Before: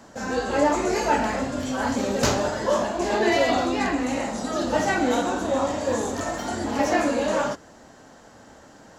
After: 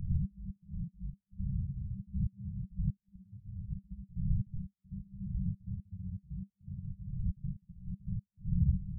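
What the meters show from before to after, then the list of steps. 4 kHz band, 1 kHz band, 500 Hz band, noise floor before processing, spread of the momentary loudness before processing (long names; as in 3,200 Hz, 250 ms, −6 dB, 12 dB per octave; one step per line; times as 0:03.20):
below −40 dB, below −40 dB, below −40 dB, −49 dBFS, 6 LU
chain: wind on the microphone 180 Hz −35 dBFS
gate on every frequency bin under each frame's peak −20 dB strong
downward compressor, threshold −27 dBFS, peak gain reduction 11.5 dB
gate pattern "xx.x.xx.x..xxx" 119 BPM −60 dB
backwards echo 71 ms −17.5 dB
brick-wall band-stop 200–9,100 Hz
level +4.5 dB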